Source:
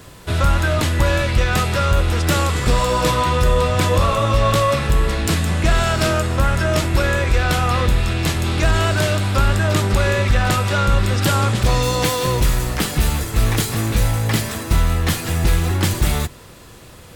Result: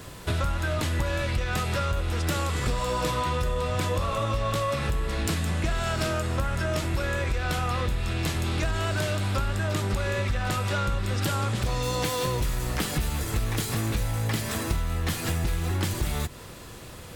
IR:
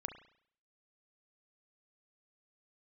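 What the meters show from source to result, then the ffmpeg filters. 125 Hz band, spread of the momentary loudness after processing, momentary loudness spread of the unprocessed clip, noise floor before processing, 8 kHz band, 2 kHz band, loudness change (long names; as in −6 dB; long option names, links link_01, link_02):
−9.5 dB, 2 LU, 3 LU, −41 dBFS, −9.0 dB, −9.5 dB, −9.5 dB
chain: -af "acompressor=threshold=-23dB:ratio=6,volume=-1dB"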